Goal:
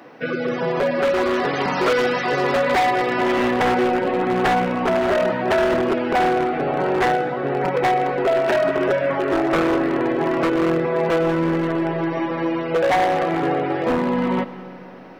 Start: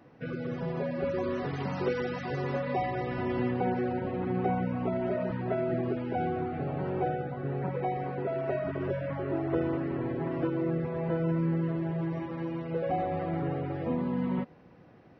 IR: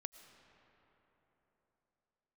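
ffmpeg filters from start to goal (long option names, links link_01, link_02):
-filter_complex "[0:a]highpass=260,aeval=exprs='0.0422*(abs(mod(val(0)/0.0422+3,4)-2)-1)':channel_layout=same,asplit=2[link_01][link_02];[1:a]atrim=start_sample=2205,lowshelf=frequency=380:gain=-9.5[link_03];[link_02][link_03]afir=irnorm=-1:irlink=0,volume=11.5dB[link_04];[link_01][link_04]amix=inputs=2:normalize=0,volume=7dB"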